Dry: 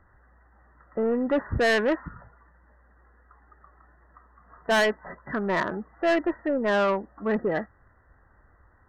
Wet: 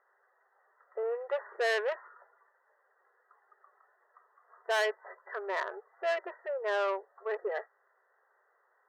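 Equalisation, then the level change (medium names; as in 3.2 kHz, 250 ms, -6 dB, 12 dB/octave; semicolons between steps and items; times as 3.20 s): brick-wall FIR high-pass 370 Hz; -7.0 dB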